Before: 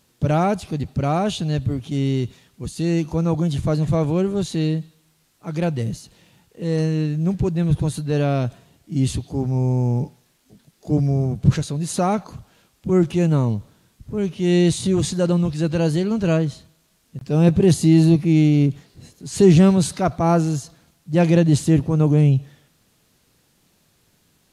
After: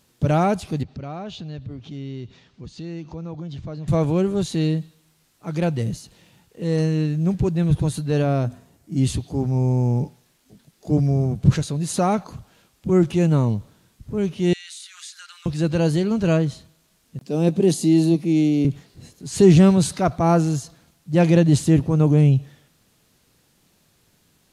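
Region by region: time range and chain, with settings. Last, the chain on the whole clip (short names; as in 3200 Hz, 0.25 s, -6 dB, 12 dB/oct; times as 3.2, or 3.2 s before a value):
0.83–3.88 compressor 2:1, threshold -39 dBFS + LPF 5600 Hz 24 dB/oct
8.22–8.98 bell 3200 Hz -7 dB 1.2 oct + notches 50/100/150/200/250 Hz
14.53–15.46 elliptic high-pass 1400 Hz, stop band 80 dB + compressor 2.5:1, threshold -39 dBFS
17.19–18.65 HPF 190 Hz 24 dB/oct + bell 1500 Hz -7.5 dB 1.7 oct
whole clip: dry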